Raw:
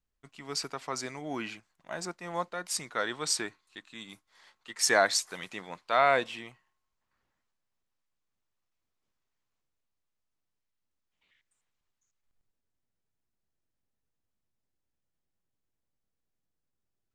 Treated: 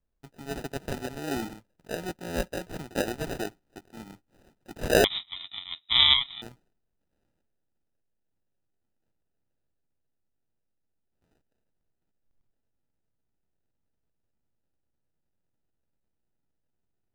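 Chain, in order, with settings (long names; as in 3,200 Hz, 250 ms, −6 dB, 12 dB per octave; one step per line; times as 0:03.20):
high-shelf EQ 2,100 Hz −11.5 dB
decimation without filtering 40×
0:05.04–0:06.42: voice inversion scrambler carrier 3,800 Hz
level +5 dB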